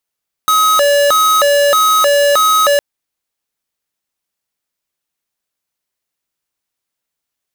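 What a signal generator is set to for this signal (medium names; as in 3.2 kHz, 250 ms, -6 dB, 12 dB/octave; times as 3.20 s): siren hi-lo 573–1270 Hz 1.6 per s square -10.5 dBFS 2.31 s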